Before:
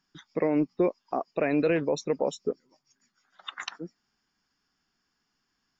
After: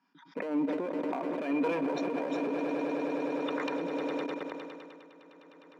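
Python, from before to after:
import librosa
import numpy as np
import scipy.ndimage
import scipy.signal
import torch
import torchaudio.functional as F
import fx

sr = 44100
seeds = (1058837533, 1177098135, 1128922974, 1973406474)

p1 = fx.peak_eq(x, sr, hz=320.0, db=-12.0, octaves=0.54)
p2 = 10.0 ** (-31.5 / 20.0) * np.tanh(p1 / 10.0 ** (-31.5 / 20.0))
p3 = p1 + F.gain(torch.from_numpy(p2), -11.5).numpy()
p4 = scipy.signal.sosfilt(scipy.signal.butter(2, 3900.0, 'lowpass', fs=sr, output='sos'), p3)
p5 = fx.high_shelf(p4, sr, hz=2200.0, db=-8.5)
p6 = p5 + 10.0 ** (-22.5 / 20.0) * np.pad(p5, (int(131 * sr / 1000.0), 0))[:len(p5)]
p7 = fx.clip_asym(p6, sr, top_db=-27.5, bottom_db=-22.0)
p8 = fx.echo_swell(p7, sr, ms=102, loudest=8, wet_db=-14.5)
p9 = fx.level_steps(p8, sr, step_db=21)
p10 = scipy.signal.sosfilt(scipy.signal.butter(4, 200.0, 'highpass', fs=sr, output='sos'), p9)
p11 = fx.small_body(p10, sr, hz=(280.0, 950.0, 2400.0), ring_ms=60, db=14)
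p12 = fx.sustainer(p11, sr, db_per_s=27.0)
y = F.gain(torch.from_numpy(p12), 5.0).numpy()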